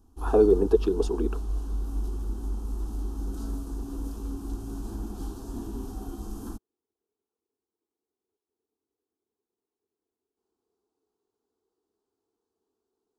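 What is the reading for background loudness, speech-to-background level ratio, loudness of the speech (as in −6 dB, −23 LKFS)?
−35.5 LKFS, 11.5 dB, −24.0 LKFS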